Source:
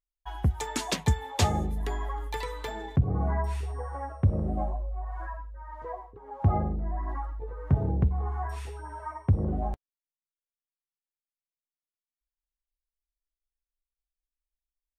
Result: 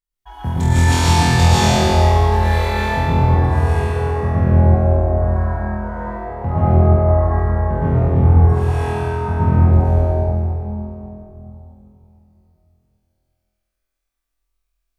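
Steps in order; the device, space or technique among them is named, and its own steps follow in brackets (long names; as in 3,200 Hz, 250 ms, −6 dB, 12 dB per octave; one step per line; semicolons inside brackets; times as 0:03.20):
tunnel (flutter between parallel walls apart 4.1 metres, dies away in 1.4 s; convolution reverb RT60 3.3 s, pre-delay 106 ms, DRR −10 dB)
level −2 dB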